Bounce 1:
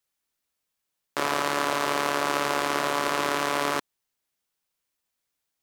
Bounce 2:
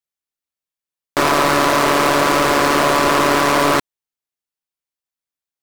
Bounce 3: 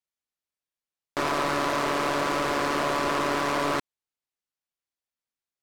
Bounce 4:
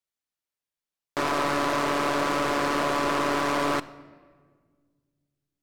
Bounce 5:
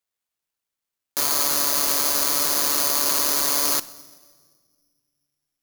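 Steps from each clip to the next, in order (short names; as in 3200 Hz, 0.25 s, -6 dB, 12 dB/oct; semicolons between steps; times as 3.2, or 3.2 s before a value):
sample leveller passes 5
high shelf 11000 Hz -11 dB; limiter -18 dBFS, peak gain reduction 9.5 dB; gain -2 dB
shoebox room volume 2100 m³, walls mixed, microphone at 0.35 m
low shelf 490 Hz -5.5 dB; careless resampling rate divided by 8×, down none, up zero stuff; gain -3.5 dB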